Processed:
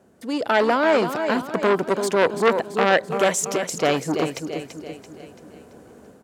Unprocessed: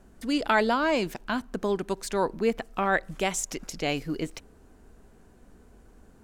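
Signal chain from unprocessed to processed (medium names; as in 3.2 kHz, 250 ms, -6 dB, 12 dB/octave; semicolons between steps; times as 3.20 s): high-pass 94 Hz 24 dB/octave; peaking EQ 530 Hz +7.5 dB 0.89 oct; level rider gain up to 9.5 dB; feedback delay 336 ms, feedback 47%, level -9 dB; transformer saturation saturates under 1.6 kHz; trim -1 dB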